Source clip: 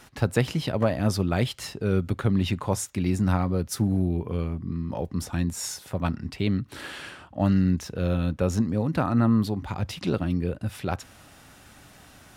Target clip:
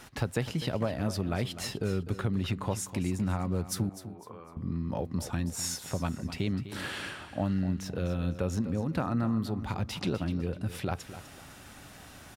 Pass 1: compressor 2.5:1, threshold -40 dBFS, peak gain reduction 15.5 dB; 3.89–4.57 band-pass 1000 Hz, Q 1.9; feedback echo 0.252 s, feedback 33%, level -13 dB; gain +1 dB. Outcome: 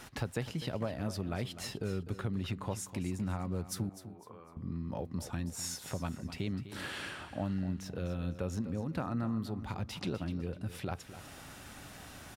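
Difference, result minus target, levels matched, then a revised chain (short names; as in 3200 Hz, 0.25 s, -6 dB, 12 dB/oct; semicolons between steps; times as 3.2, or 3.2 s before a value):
compressor: peak gain reduction +5.5 dB
compressor 2.5:1, threshold -31 dBFS, peak gain reduction 10 dB; 3.89–4.57 band-pass 1000 Hz, Q 1.9; feedback echo 0.252 s, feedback 33%, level -13 dB; gain +1 dB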